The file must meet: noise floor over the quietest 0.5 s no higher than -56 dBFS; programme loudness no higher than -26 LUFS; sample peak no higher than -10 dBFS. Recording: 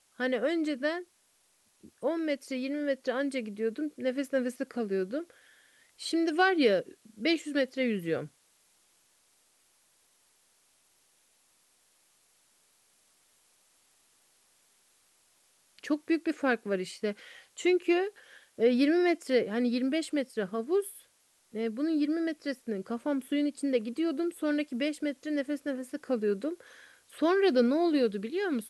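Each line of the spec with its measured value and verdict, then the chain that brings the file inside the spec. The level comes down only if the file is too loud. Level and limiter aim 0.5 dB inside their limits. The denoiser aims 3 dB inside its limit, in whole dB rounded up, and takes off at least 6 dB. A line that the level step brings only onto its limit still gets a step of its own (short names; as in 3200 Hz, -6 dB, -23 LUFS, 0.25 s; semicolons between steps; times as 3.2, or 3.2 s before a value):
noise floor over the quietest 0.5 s -69 dBFS: OK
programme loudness -30.5 LUFS: OK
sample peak -12.0 dBFS: OK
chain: none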